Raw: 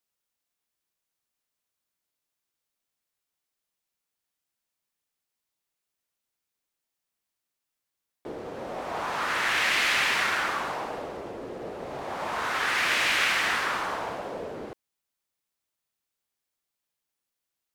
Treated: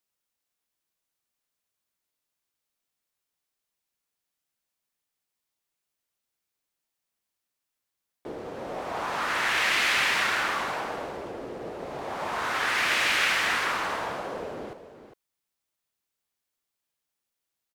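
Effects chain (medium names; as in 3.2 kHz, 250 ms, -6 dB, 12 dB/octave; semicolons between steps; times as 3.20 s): delay 405 ms -11.5 dB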